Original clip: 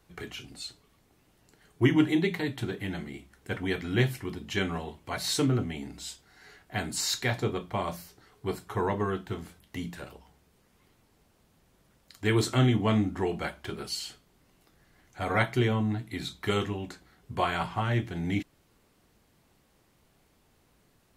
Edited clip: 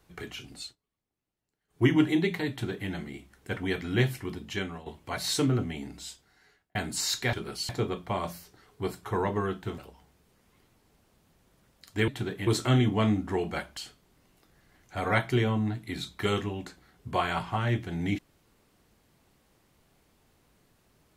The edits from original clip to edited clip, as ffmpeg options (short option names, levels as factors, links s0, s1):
-filter_complex "[0:a]asplit=11[s0][s1][s2][s3][s4][s5][s6][s7][s8][s9][s10];[s0]atrim=end=0.76,asetpts=PTS-STARTPTS,afade=t=out:st=0.62:d=0.14:silence=0.0668344[s11];[s1]atrim=start=0.76:end=1.68,asetpts=PTS-STARTPTS,volume=0.0668[s12];[s2]atrim=start=1.68:end=4.86,asetpts=PTS-STARTPTS,afade=t=in:d=0.14:silence=0.0668344,afade=t=out:st=2.69:d=0.49:silence=0.266073[s13];[s3]atrim=start=4.86:end=6.75,asetpts=PTS-STARTPTS,afade=t=in:d=0.004:c=hsin:silence=0.266073,afade=t=out:st=1.04:d=0.85[s14];[s4]atrim=start=6.75:end=7.332,asetpts=PTS-STARTPTS,afade=t=in:d=0.004:c=hsin[s15];[s5]atrim=start=13.648:end=14.012[s16];[s6]atrim=start=7.328:end=9.422[s17];[s7]atrim=start=10.048:end=12.352[s18];[s8]atrim=start=2.498:end=2.892[s19];[s9]atrim=start=12.348:end=13.652[s20];[s10]atrim=start=14.008[s21];[s11][s12][s13][s14][s15]concat=n=5:v=0:a=1[s22];[s22][s16]acrossfade=d=0.004:c1=hsin:c2=hsin[s23];[s23][s17]acrossfade=d=0.004:c1=hsin:c2=hsin[s24];[s24][s18]acrossfade=d=0.004:c1=hsin:c2=hsin[s25];[s25][s19]acrossfade=d=0.004:c1=hsin:c2=hsin[s26];[s26][s20]acrossfade=d=0.004:c1=hsin:c2=hsin[s27];[s27][s21]acrossfade=d=0.004:c1=hsin:c2=hsin"